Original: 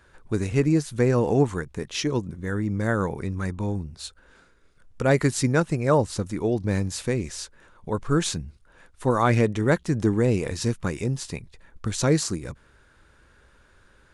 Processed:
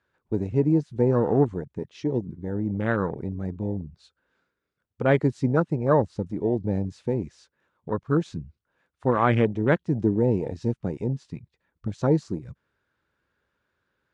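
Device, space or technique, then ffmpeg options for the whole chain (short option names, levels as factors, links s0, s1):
over-cleaned archive recording: -af "highpass=100,lowpass=5000,afwtdn=0.0447"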